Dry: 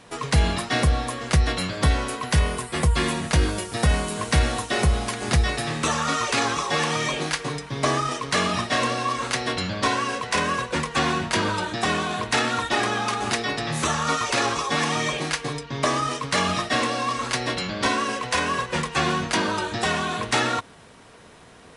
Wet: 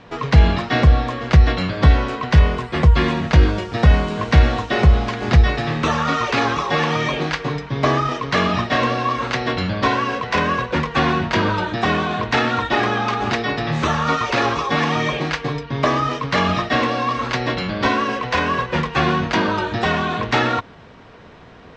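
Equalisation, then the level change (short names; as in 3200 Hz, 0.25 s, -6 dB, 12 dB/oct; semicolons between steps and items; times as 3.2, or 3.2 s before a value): LPF 8200 Hz 24 dB/oct; air absorption 190 m; low shelf 150 Hz +3.5 dB; +5.5 dB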